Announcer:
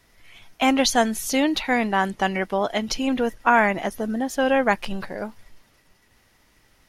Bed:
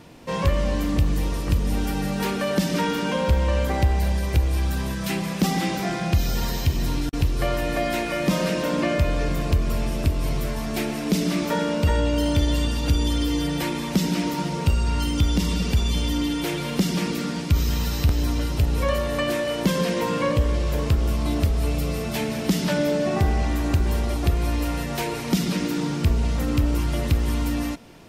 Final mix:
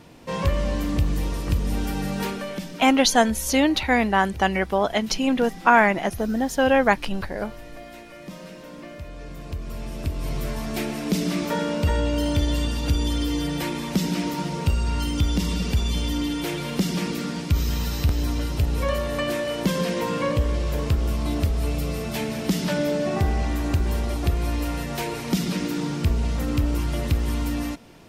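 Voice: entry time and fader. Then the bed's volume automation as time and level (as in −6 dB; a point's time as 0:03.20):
2.20 s, +1.5 dB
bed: 0:02.22 −1.5 dB
0:02.88 −17 dB
0:08.99 −17 dB
0:10.49 −1.5 dB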